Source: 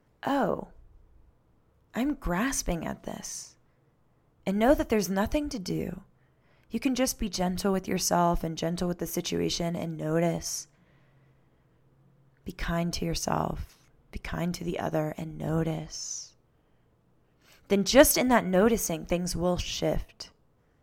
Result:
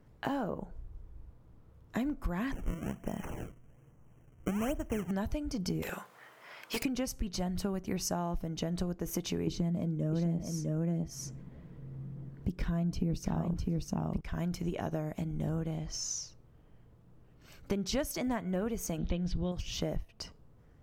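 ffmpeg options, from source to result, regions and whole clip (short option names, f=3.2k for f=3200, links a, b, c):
-filter_complex "[0:a]asettb=1/sr,asplit=3[a][b][c];[a]atrim=end=2.524[d];[b]atrim=start=2.52:end=5.11,asetpts=PTS-STARTPTS,afade=t=in:d=0.004:c=qsin,afade=t=out:st=2.586:d=0.004:c=qsin,deesser=0.95,acrusher=samples=30:mix=1:aa=0.000001:lfo=1:lforange=48:lforate=1.2,asuperstop=centerf=4200:order=20:qfactor=1.8[e];[c]atrim=start=5.106[f];[d][e]acrossfade=d=0.004:c1=hsin:c2=qsin[g];[g][f]acrossfade=d=0.004:c1=qsin:c2=hsin,asettb=1/sr,asplit=3[h][i][j];[h]atrim=end=5.824[k];[i]atrim=start=5.82:end=6.83,asetpts=PTS-STARTPTS,afade=t=in:d=0.004:c=qsin,afade=t=out:st=1.006:d=0.004:c=qsin,highpass=890,aeval=exprs='0.0422*sin(PI/2*5.01*val(0)/0.0422)':c=same[l];[j]atrim=start=6.826[m];[k][l]acrossfade=d=0.004:c1=hsin:c2=qsin[n];[n][m]acrossfade=d=0.004:c1=qsin:c2=hsin,asettb=1/sr,asplit=3[o][p][q];[o]atrim=end=9.474[r];[p]atrim=start=9.47:end=14.21,asetpts=PTS-STARTPTS,afade=t=in:d=0.004:c=qsin,afade=t=out:st=4.736:d=0.004:c=qsin,aphaser=in_gain=1:out_gain=1:delay=2.3:decay=0.3:speed=1.1:type=triangular,equalizer=f=220:w=0.56:g=12,aecho=1:1:654:0.596,atrim=end_sample=209034[s];[q]atrim=start=14.206[t];[r][s]acrossfade=d=0.004:c1=hsin:c2=qsin[u];[u][t]acrossfade=d=0.004:c1=qsin:c2=hsin,asettb=1/sr,asplit=3[v][w][x];[v]atrim=end=18.984[y];[w]atrim=start=18.98:end=19.52,asetpts=PTS-STARTPTS,afade=t=in:d=0.004:c=qsin,afade=t=out:st=0.536:d=0.004:c=qsin,lowpass=f=3.6k:t=q:w=8.5,lowshelf=f=370:g=8.5[z];[x]atrim=start=19.516[aa];[y][z]acrossfade=d=0.004:c1=hsin:c2=qsin[ab];[ab][aa]acrossfade=d=0.004:c1=qsin:c2=hsin,lowshelf=f=230:g=9.5,acompressor=threshold=-31dB:ratio=6"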